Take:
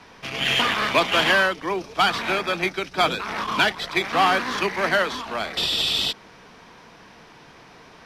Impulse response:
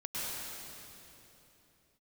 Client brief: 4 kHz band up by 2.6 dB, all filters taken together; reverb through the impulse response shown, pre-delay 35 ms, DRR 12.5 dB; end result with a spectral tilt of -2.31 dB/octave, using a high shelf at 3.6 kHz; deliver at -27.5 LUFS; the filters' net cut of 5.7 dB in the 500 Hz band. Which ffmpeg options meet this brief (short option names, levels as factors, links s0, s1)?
-filter_complex "[0:a]equalizer=f=500:t=o:g=-8,highshelf=f=3600:g=-5,equalizer=f=4000:t=o:g=6.5,asplit=2[s0][s1];[1:a]atrim=start_sample=2205,adelay=35[s2];[s1][s2]afir=irnorm=-1:irlink=0,volume=0.141[s3];[s0][s3]amix=inputs=2:normalize=0,volume=0.473"